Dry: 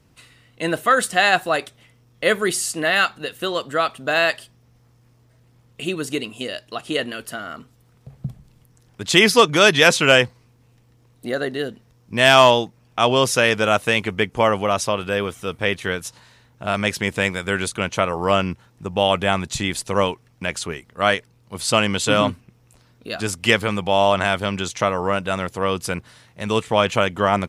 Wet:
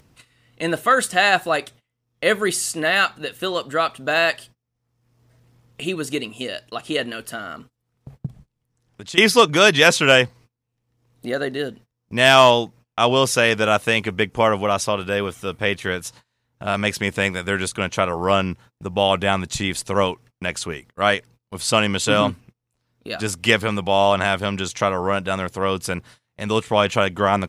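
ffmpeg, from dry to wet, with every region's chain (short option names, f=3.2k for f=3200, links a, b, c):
-filter_complex "[0:a]asettb=1/sr,asplit=3[a][b][c];[a]atrim=end=8.264[d];[b]atrim=start=8.26:end=9.18,asetpts=PTS-STARTPTS,afade=t=in:d=0.004:c=qsin,afade=t=out:st=0.916:d=0.004:c=qsin,equalizer=f=13k:t=o:w=0.3:g=-6.5,acompressor=threshold=-40dB:ratio=2:attack=3.2:release=140:knee=1:detection=peak[e];[c]atrim=start=9.176[f];[d][e]acrossfade=d=0.004:c1=hsin:c2=qsin[g];[g][f]acrossfade=d=0.004:c1=qsin:c2=hsin,agate=range=-27dB:threshold=-43dB:ratio=16:detection=peak,acompressor=mode=upward:threshold=-35dB:ratio=2.5"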